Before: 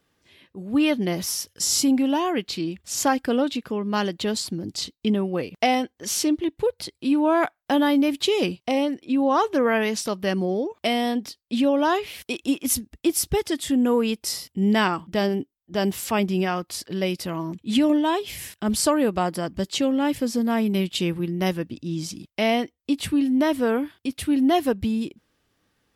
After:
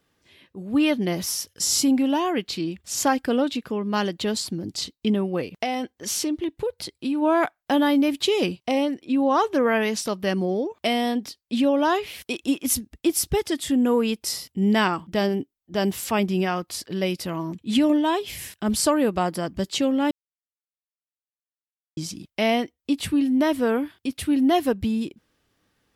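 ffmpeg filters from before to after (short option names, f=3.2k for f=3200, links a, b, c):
-filter_complex "[0:a]asplit=3[a][b][c];[a]afade=t=out:st=5.53:d=0.02[d];[b]acompressor=threshold=-22dB:ratio=4:attack=3.2:release=140:knee=1:detection=peak,afade=t=in:st=5.53:d=0.02,afade=t=out:st=7.21:d=0.02[e];[c]afade=t=in:st=7.21:d=0.02[f];[d][e][f]amix=inputs=3:normalize=0,asplit=3[g][h][i];[g]atrim=end=20.11,asetpts=PTS-STARTPTS,afade=t=out:st=20.106:d=0.004:c=hsin[j];[h]atrim=start=20.11:end=21.97,asetpts=PTS-STARTPTS,volume=0[k];[i]atrim=start=21.97,asetpts=PTS-STARTPTS,afade=t=in:d=0.004:c=hsin[l];[j][k][l]concat=n=3:v=0:a=1"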